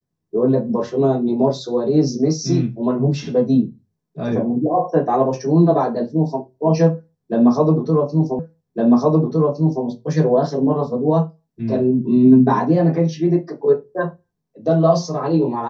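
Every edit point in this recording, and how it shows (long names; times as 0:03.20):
0:08.39: the same again, the last 1.46 s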